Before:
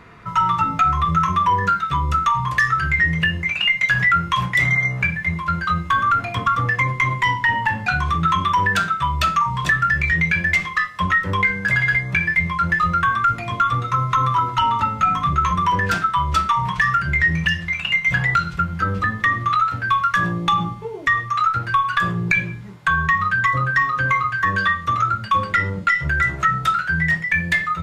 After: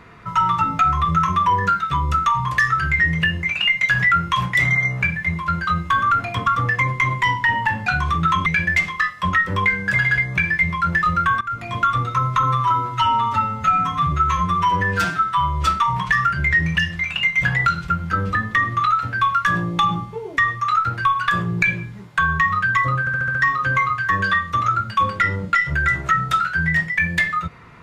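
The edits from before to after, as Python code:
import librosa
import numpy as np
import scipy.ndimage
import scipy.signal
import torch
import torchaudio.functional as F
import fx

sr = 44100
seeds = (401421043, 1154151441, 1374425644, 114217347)

y = fx.edit(x, sr, fx.cut(start_s=8.46, length_s=1.77),
    fx.fade_in_from(start_s=13.18, length_s=0.34, floor_db=-17.5),
    fx.stretch_span(start_s=14.2, length_s=2.16, factor=1.5),
    fx.stutter(start_s=23.69, slice_s=0.07, count=6), tone=tone)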